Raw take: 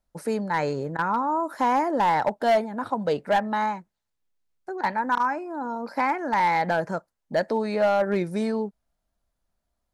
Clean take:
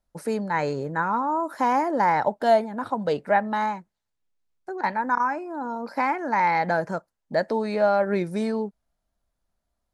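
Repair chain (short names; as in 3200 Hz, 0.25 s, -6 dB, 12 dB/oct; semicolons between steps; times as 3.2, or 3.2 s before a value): clip repair -15.5 dBFS; interpolate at 0.97, 15 ms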